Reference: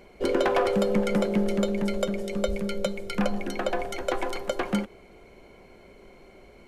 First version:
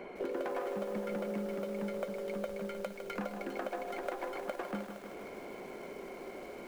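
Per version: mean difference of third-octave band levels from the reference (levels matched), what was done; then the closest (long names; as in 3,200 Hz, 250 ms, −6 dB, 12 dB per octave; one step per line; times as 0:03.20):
8.5 dB: stylus tracing distortion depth 0.3 ms
three-way crossover with the lows and the highs turned down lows −19 dB, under 190 Hz, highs −14 dB, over 2,500 Hz
downward compressor 4 to 1, threshold −47 dBFS, peak gain reduction 22 dB
feedback echo at a low word length 155 ms, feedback 80%, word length 10 bits, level −8.5 dB
level +7.5 dB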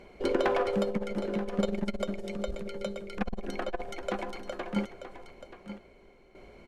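3.5 dB: high-shelf EQ 10,000 Hz −12 dB
shaped tremolo saw down 0.63 Hz, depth 70%
single-tap delay 931 ms −12.5 dB
saturating transformer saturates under 160 Hz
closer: second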